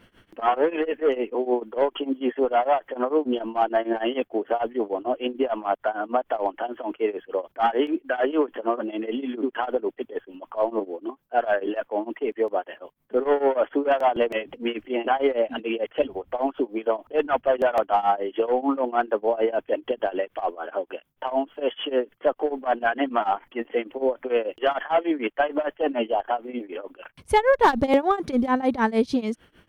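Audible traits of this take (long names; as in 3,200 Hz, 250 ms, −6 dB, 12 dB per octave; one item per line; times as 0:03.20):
tremolo triangle 6.7 Hz, depth 95%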